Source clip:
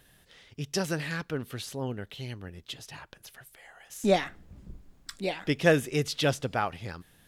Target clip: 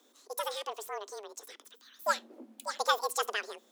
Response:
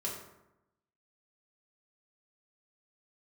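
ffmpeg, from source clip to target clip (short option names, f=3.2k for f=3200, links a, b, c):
-filter_complex "[0:a]asetrate=86436,aresample=44100,afreqshift=210,asplit=2[a][b];[1:a]atrim=start_sample=2205,atrim=end_sample=3969[c];[b][c]afir=irnorm=-1:irlink=0,volume=-24.5dB[d];[a][d]amix=inputs=2:normalize=0,volume=-5dB"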